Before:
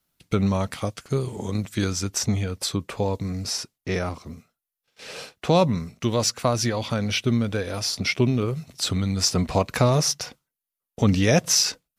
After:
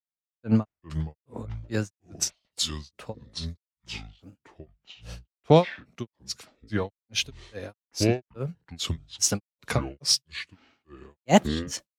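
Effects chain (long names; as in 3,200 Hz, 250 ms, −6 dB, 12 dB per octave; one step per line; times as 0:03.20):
granular cloud 240 ms, grains 2.4 per second, pitch spread up and down by 3 semitones
delay with pitch and tempo change per echo 224 ms, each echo −6 semitones, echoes 2, each echo −6 dB
multiband upward and downward expander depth 70%
level −2.5 dB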